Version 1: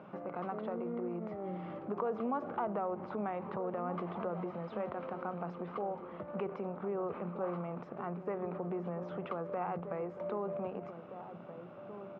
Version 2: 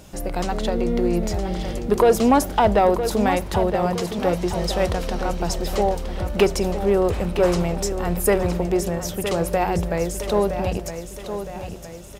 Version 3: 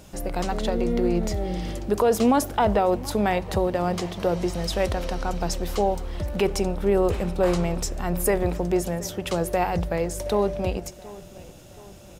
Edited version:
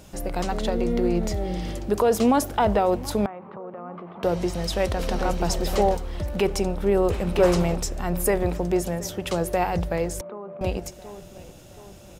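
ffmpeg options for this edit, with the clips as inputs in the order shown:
-filter_complex "[0:a]asplit=2[a][b];[1:a]asplit=2[c][d];[2:a]asplit=5[e][f][g][h][i];[e]atrim=end=3.262[j];[a]atrim=start=3.258:end=4.232[k];[f]atrim=start=4.228:end=4.992[l];[c]atrim=start=4.988:end=5.972[m];[g]atrim=start=5.968:end=7.272[n];[d]atrim=start=7.268:end=7.762[o];[h]atrim=start=7.758:end=10.212[p];[b]atrim=start=10.208:end=10.612[q];[i]atrim=start=10.608[r];[j][k]acrossfade=d=0.004:c1=hsin:c2=hsin[s];[s][l]acrossfade=d=0.004:c1=hsin:c2=hsin[t];[t][m]acrossfade=d=0.004:c1=hsin:c2=hsin[u];[u][n]acrossfade=d=0.004:c1=hsin:c2=hsin[v];[v][o]acrossfade=d=0.004:c1=hsin:c2=hsin[w];[w][p]acrossfade=d=0.004:c1=hsin:c2=hsin[x];[x][q]acrossfade=d=0.004:c1=hsin:c2=hsin[y];[y][r]acrossfade=d=0.004:c1=hsin:c2=hsin"

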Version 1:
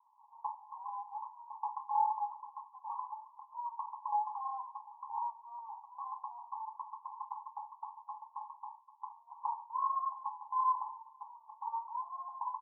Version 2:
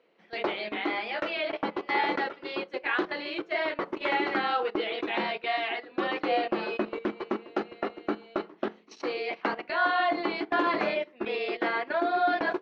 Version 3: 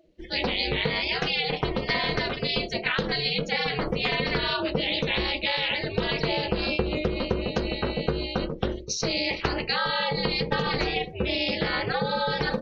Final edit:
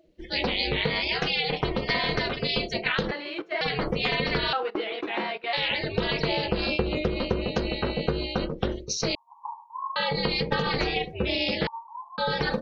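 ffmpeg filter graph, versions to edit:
-filter_complex "[1:a]asplit=2[a][b];[0:a]asplit=2[c][d];[2:a]asplit=5[e][f][g][h][i];[e]atrim=end=3.112[j];[a]atrim=start=3.108:end=3.612[k];[f]atrim=start=3.608:end=4.532[l];[b]atrim=start=4.528:end=5.532[m];[g]atrim=start=5.528:end=9.152[n];[c]atrim=start=9.148:end=9.962[o];[h]atrim=start=9.958:end=11.672[p];[d]atrim=start=11.668:end=12.182[q];[i]atrim=start=12.178[r];[j][k]acrossfade=d=0.004:c1=hsin:c2=hsin[s];[s][l]acrossfade=d=0.004:c1=hsin:c2=hsin[t];[t][m]acrossfade=d=0.004:c1=hsin:c2=hsin[u];[u][n]acrossfade=d=0.004:c1=hsin:c2=hsin[v];[v][o]acrossfade=d=0.004:c1=hsin:c2=hsin[w];[w][p]acrossfade=d=0.004:c1=hsin:c2=hsin[x];[x][q]acrossfade=d=0.004:c1=hsin:c2=hsin[y];[y][r]acrossfade=d=0.004:c1=hsin:c2=hsin"

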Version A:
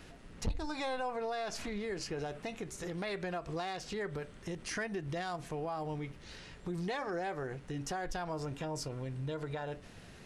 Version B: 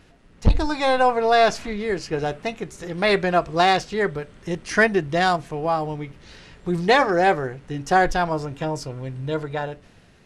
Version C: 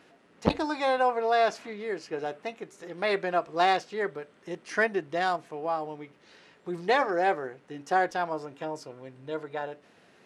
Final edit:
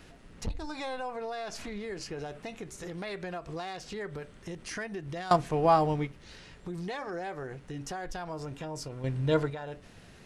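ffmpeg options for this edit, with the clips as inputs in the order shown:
-filter_complex "[1:a]asplit=2[a][b];[0:a]asplit=3[c][d][e];[c]atrim=end=5.312[f];[a]atrim=start=5.308:end=6.072[g];[d]atrim=start=6.068:end=9.042[h];[b]atrim=start=9.038:end=9.502[i];[e]atrim=start=9.498[j];[f][g]acrossfade=d=0.004:c1=hsin:c2=hsin[k];[k][h]acrossfade=d=0.004:c1=hsin:c2=hsin[l];[l][i]acrossfade=d=0.004:c1=hsin:c2=hsin[m];[m][j]acrossfade=d=0.004:c1=hsin:c2=hsin"

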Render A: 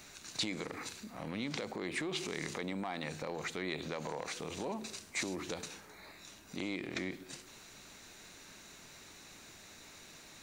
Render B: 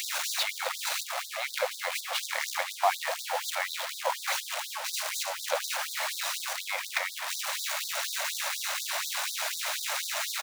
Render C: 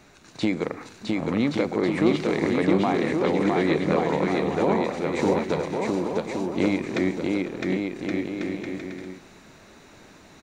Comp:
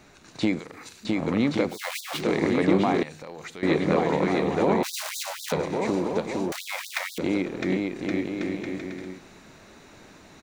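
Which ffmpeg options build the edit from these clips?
-filter_complex "[0:a]asplit=2[a][b];[1:a]asplit=3[c][d][e];[2:a]asplit=6[f][g][h][i][j][k];[f]atrim=end=0.592[l];[a]atrim=start=0.588:end=1.052[m];[g]atrim=start=1.048:end=1.78[n];[c]atrim=start=1.68:end=2.23[o];[h]atrim=start=2.13:end=3.032[p];[b]atrim=start=3.028:end=3.632[q];[i]atrim=start=3.628:end=4.832[r];[d]atrim=start=4.828:end=5.522[s];[j]atrim=start=5.518:end=6.522[t];[e]atrim=start=6.518:end=7.182[u];[k]atrim=start=7.178[v];[l][m]acrossfade=d=0.004:c1=hsin:c2=hsin[w];[w][n]acrossfade=d=0.004:c1=hsin:c2=hsin[x];[x][o]acrossfade=d=0.1:c1=tri:c2=tri[y];[y][p]acrossfade=d=0.1:c1=tri:c2=tri[z];[z][q]acrossfade=d=0.004:c1=hsin:c2=hsin[aa];[aa][r]acrossfade=d=0.004:c1=hsin:c2=hsin[ab];[ab][s]acrossfade=d=0.004:c1=hsin:c2=hsin[ac];[ac][t]acrossfade=d=0.004:c1=hsin:c2=hsin[ad];[ad][u]acrossfade=d=0.004:c1=hsin:c2=hsin[ae];[ae][v]acrossfade=d=0.004:c1=hsin:c2=hsin"

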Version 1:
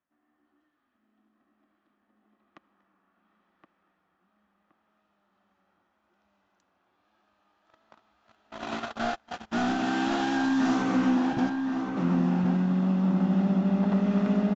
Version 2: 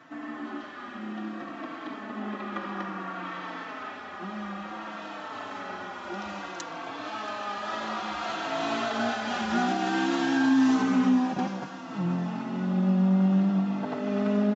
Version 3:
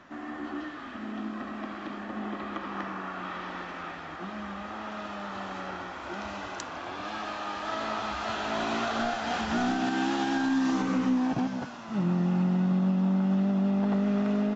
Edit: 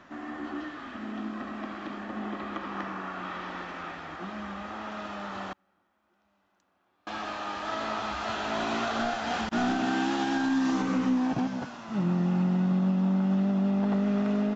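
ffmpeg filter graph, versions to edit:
-filter_complex "[0:a]asplit=2[a][b];[2:a]asplit=3[c][d][e];[c]atrim=end=5.532[f];[a]atrim=start=5.528:end=7.072[g];[d]atrim=start=7.068:end=9.492[h];[b]atrim=start=9.488:end=10.012[i];[e]atrim=start=10.008[j];[f][g]acrossfade=d=0.004:c1=hsin:c2=hsin[k];[k][h]acrossfade=d=0.004:c1=hsin:c2=hsin[l];[l][i]acrossfade=d=0.004:c1=hsin:c2=hsin[m];[m][j]acrossfade=d=0.004:c1=hsin:c2=hsin"

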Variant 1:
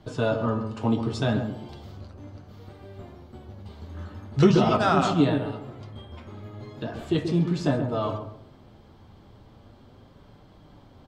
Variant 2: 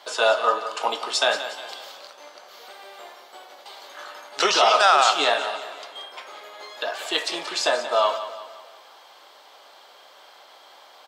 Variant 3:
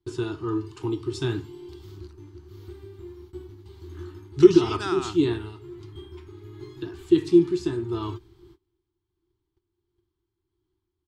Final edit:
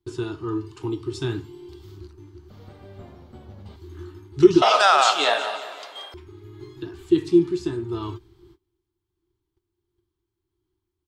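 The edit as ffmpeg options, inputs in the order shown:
-filter_complex "[2:a]asplit=3[a][b][c];[a]atrim=end=2.502[d];[0:a]atrim=start=2.498:end=3.762[e];[b]atrim=start=3.758:end=4.622[f];[1:a]atrim=start=4.618:end=6.142[g];[c]atrim=start=6.138[h];[d][e]acrossfade=d=0.004:c1=hsin:c2=hsin[i];[i][f]acrossfade=d=0.004:c1=hsin:c2=hsin[j];[j][g]acrossfade=d=0.004:c1=hsin:c2=hsin[k];[k][h]acrossfade=d=0.004:c1=hsin:c2=hsin"

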